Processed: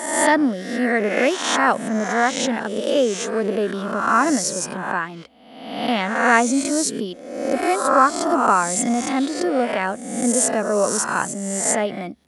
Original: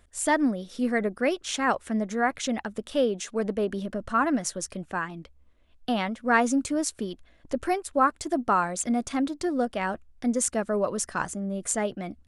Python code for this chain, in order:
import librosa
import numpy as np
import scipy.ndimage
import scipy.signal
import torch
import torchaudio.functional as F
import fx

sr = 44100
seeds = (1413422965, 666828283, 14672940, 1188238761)

y = fx.spec_swells(x, sr, rise_s=0.95)
y = scipy.signal.sosfilt(scipy.signal.butter(2, 160.0, 'highpass', fs=sr, output='sos'), y)
y = y * librosa.db_to_amplitude(4.5)